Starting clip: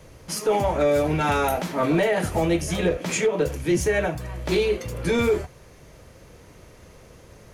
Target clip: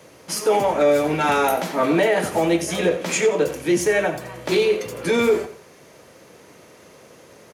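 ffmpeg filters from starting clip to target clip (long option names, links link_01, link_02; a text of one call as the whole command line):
ffmpeg -i in.wav -filter_complex "[0:a]highpass=220,asplit=2[link_01][link_02];[link_02]aecho=0:1:89|178|267:0.224|0.0784|0.0274[link_03];[link_01][link_03]amix=inputs=2:normalize=0,volume=3.5dB" out.wav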